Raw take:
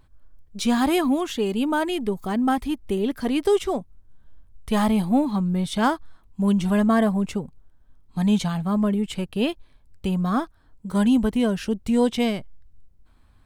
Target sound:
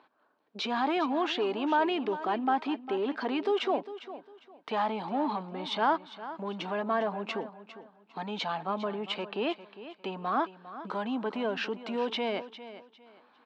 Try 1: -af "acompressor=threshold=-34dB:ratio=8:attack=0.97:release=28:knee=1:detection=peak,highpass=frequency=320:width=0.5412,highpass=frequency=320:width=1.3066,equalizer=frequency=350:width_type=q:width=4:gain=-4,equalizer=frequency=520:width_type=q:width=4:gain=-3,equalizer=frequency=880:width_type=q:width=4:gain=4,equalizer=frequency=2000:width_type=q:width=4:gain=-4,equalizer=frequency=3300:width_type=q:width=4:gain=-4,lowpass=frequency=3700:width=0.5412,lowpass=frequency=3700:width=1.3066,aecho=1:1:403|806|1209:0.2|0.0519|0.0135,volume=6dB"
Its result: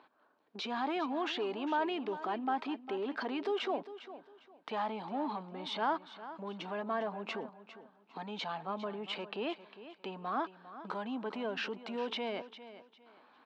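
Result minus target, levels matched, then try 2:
downward compressor: peak gain reduction +6 dB
-af "acompressor=threshold=-27dB:ratio=8:attack=0.97:release=28:knee=1:detection=peak,highpass=frequency=320:width=0.5412,highpass=frequency=320:width=1.3066,equalizer=frequency=350:width_type=q:width=4:gain=-4,equalizer=frequency=520:width_type=q:width=4:gain=-3,equalizer=frequency=880:width_type=q:width=4:gain=4,equalizer=frequency=2000:width_type=q:width=4:gain=-4,equalizer=frequency=3300:width_type=q:width=4:gain=-4,lowpass=frequency=3700:width=0.5412,lowpass=frequency=3700:width=1.3066,aecho=1:1:403|806|1209:0.2|0.0519|0.0135,volume=6dB"

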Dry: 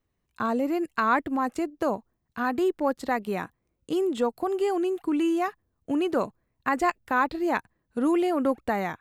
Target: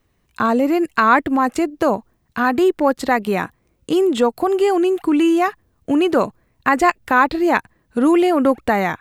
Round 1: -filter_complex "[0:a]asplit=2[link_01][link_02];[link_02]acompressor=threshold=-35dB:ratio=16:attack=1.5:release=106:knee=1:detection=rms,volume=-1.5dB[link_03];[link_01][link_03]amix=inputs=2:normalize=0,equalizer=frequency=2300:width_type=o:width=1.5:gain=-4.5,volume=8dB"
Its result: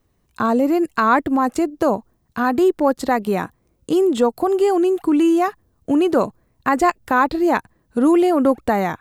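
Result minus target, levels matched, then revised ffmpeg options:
2,000 Hz band −4.0 dB
-filter_complex "[0:a]asplit=2[link_01][link_02];[link_02]acompressor=threshold=-35dB:ratio=16:attack=1.5:release=106:knee=1:detection=rms,volume=-1.5dB[link_03];[link_01][link_03]amix=inputs=2:normalize=0,equalizer=frequency=2300:width_type=o:width=1.5:gain=2,volume=8dB"

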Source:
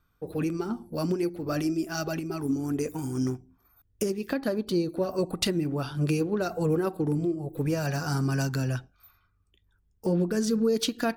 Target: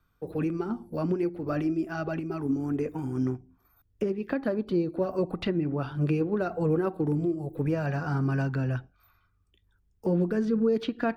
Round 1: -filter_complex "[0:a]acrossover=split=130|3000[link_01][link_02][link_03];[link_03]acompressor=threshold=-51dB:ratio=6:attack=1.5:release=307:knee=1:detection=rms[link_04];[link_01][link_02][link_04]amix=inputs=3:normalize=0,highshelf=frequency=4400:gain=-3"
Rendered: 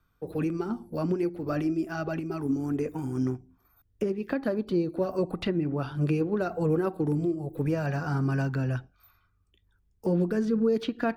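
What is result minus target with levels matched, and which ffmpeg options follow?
downward compressor: peak gain reduction −6 dB
-filter_complex "[0:a]acrossover=split=130|3000[link_01][link_02][link_03];[link_03]acompressor=threshold=-58.5dB:ratio=6:attack=1.5:release=307:knee=1:detection=rms[link_04];[link_01][link_02][link_04]amix=inputs=3:normalize=0,highshelf=frequency=4400:gain=-3"

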